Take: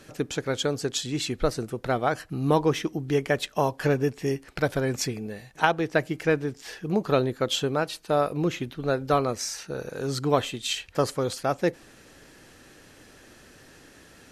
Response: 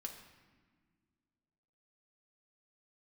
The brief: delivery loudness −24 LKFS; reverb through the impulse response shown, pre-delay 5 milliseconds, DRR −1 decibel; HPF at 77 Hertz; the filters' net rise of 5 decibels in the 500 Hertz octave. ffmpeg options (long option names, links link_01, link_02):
-filter_complex "[0:a]highpass=77,equalizer=frequency=500:width_type=o:gain=6,asplit=2[link_01][link_02];[1:a]atrim=start_sample=2205,adelay=5[link_03];[link_02][link_03]afir=irnorm=-1:irlink=0,volume=4dB[link_04];[link_01][link_04]amix=inputs=2:normalize=0,volume=-4dB"